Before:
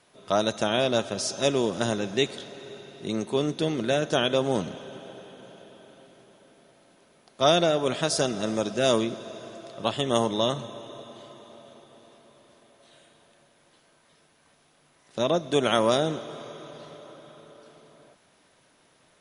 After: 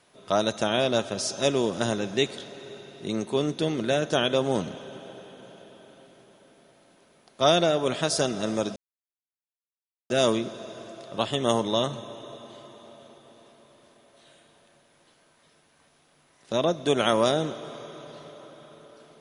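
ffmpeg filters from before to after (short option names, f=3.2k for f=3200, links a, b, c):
-filter_complex "[0:a]asplit=2[a][b];[a]atrim=end=8.76,asetpts=PTS-STARTPTS,afade=t=out:st=8.756:d=0.004:c=hsin,apad=pad_dur=1.34[c];[b]atrim=start=8.76,asetpts=PTS-STARTPTS,afade=t=in:d=0.004:c=hsin[d];[c][d]concat=n=2:v=0:a=1"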